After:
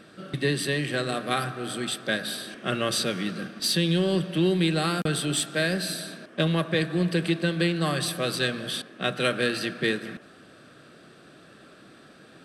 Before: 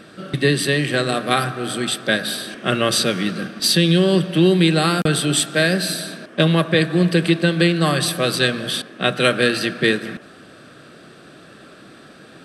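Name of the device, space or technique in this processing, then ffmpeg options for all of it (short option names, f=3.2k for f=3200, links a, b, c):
parallel distortion: -filter_complex "[0:a]asplit=2[a][b];[b]asoftclip=type=hard:threshold=-20dB,volume=-13.5dB[c];[a][c]amix=inputs=2:normalize=0,volume=-9dB"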